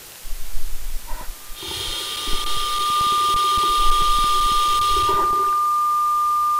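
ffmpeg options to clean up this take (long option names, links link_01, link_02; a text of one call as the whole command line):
ffmpeg -i in.wav -af "adeclick=threshold=4,bandreject=frequency=1200:width=30,afwtdn=0.011" out.wav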